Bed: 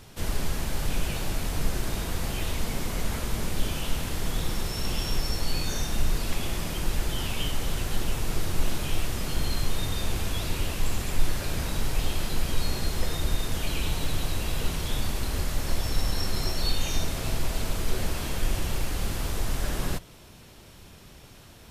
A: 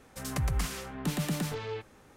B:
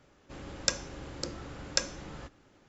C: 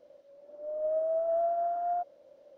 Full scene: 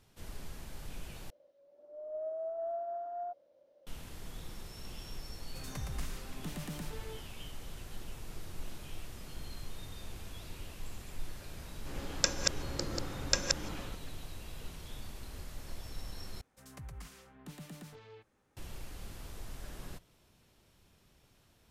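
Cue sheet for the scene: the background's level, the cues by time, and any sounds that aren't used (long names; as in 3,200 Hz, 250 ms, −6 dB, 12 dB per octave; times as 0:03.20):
bed −17 dB
0:01.30: overwrite with C −9 dB
0:05.39: mix in A −11 dB
0:11.56: mix in B −1 dB + delay that plays each chunk backwards 133 ms, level −1.5 dB
0:16.41: overwrite with A −17 dB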